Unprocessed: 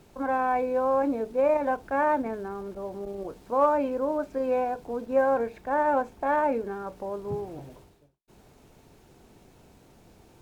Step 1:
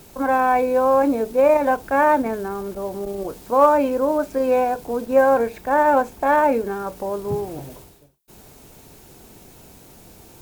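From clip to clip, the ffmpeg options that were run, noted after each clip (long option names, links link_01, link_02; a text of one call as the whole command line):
ffmpeg -i in.wav -af "aemphasis=mode=production:type=50kf,volume=7.5dB" out.wav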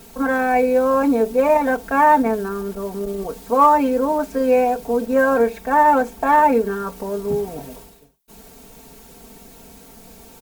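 ffmpeg -i in.wav -af "aecho=1:1:4.4:0.86" out.wav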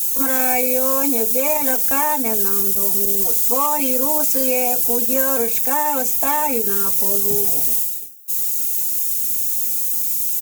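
ffmpeg -i in.wav -filter_complex "[0:a]acrossover=split=2900[link_01][link_02];[link_02]aexciter=amount=2.6:drive=6.7:freq=5800[link_03];[link_01][link_03]amix=inputs=2:normalize=0,acompressor=threshold=-17dB:ratio=2.5,aexciter=amount=5:drive=5.2:freq=2300,volume=-3dB" out.wav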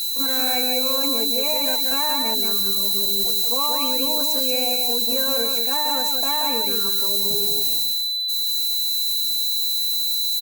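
ffmpeg -i in.wav -af "aeval=exprs='val(0)+0.112*sin(2*PI*4000*n/s)':channel_layout=same,acrusher=bits=9:mix=0:aa=0.000001,aecho=1:1:181:0.631,volume=-7dB" out.wav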